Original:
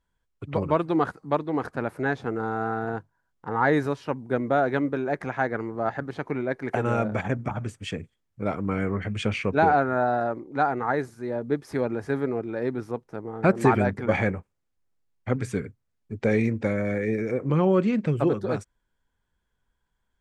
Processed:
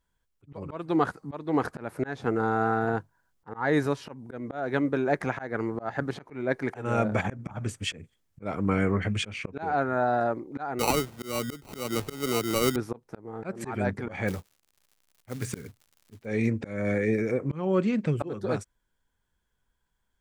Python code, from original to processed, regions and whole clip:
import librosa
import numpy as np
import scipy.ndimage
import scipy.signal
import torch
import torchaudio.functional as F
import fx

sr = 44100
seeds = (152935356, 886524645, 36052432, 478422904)

y = fx.chain(x, sr, fx.sample_hold(seeds[0], rate_hz=1700.0, jitter_pct=0),
    fx.band_squash(depth_pct=70), at=(10.79, 12.76))
y = fx.dmg_crackle(y, sr, seeds[1], per_s=120.0, level_db=-51.0, at=(14.27, 16.24), fade=0.02)
y = fx.quant_float(y, sr, bits=2, at=(14.27, 16.24), fade=0.02)
y = fx.high_shelf(y, sr, hz=4700.0, db=5.5)
y = fx.rider(y, sr, range_db=3, speed_s=0.5)
y = fx.auto_swell(y, sr, attack_ms=244.0)